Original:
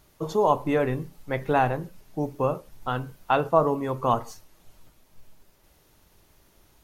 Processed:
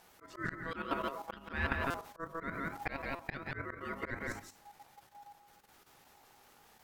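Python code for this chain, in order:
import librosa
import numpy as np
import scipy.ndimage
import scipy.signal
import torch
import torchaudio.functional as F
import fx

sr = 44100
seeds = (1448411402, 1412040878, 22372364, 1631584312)

y = fx.pitch_ramps(x, sr, semitones=3.5, every_ms=152)
y = fx.rider(y, sr, range_db=4, speed_s=0.5)
y = fx.low_shelf(y, sr, hz=280.0, db=-8.5)
y = y + 10.0 ** (-7.0 / 20.0) * np.pad(y, (int(167 * sr / 1000.0), 0))[:len(y)]
y = y * np.sin(2.0 * np.pi * 820.0 * np.arange(len(y)) / sr)
y = fx.high_shelf(y, sr, hz=4900.0, db=-4.0)
y = fx.hum_notches(y, sr, base_hz=50, count=6)
y = fx.level_steps(y, sr, step_db=10)
y = fx.auto_swell(y, sr, attack_ms=418.0)
y = fx.buffer_glitch(y, sr, at_s=(1.9, 3.15), block=256, repeats=6)
y = y * librosa.db_to_amplitude(7.5)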